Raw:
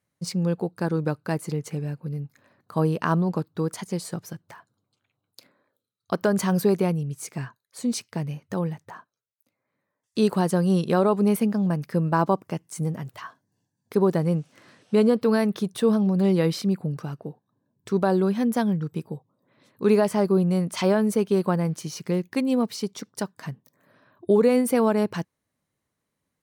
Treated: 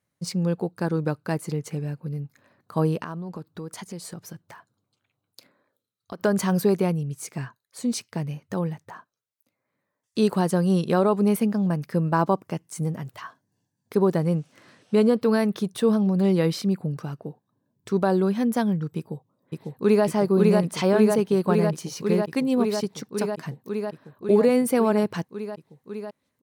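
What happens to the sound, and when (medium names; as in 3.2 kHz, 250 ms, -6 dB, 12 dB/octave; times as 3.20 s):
3.03–6.20 s: compression 3:1, threshold -34 dBFS
18.97–20.05 s: echo throw 550 ms, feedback 85%, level -1.5 dB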